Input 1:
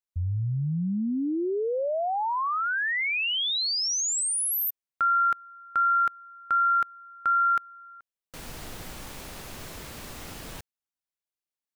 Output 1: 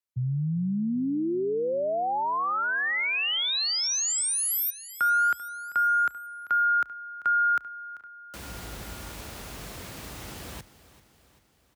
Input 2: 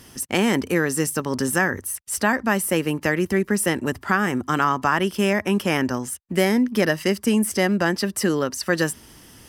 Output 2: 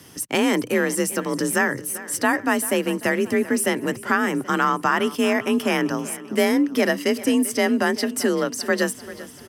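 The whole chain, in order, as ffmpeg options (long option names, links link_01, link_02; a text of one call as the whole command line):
ffmpeg -i in.wav -af "aecho=1:1:390|780|1170|1560|1950:0.141|0.0791|0.0443|0.0248|0.0139,afreqshift=38" out.wav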